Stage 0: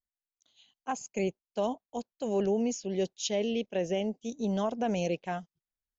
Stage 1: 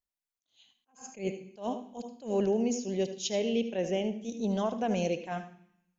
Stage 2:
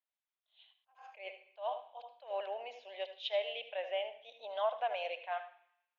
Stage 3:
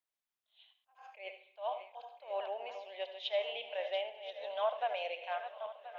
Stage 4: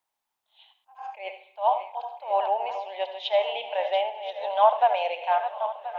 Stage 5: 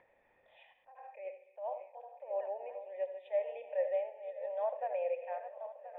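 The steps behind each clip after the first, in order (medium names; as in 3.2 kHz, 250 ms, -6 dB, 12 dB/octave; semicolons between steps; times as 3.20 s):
on a send at -10 dB: reverberation RT60 0.65 s, pre-delay 73 ms; on the sum: attacks held to a fixed rise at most 200 dB/s
Chebyshev band-pass 600–3700 Hz, order 4
backward echo that repeats 515 ms, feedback 59%, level -10.5 dB
peaking EQ 870 Hz +14.5 dB 0.57 oct; trim +7 dB
cascade formant filter e; bass shelf 300 Hz +11.5 dB; upward compressor, threshold -40 dBFS; trim -3.5 dB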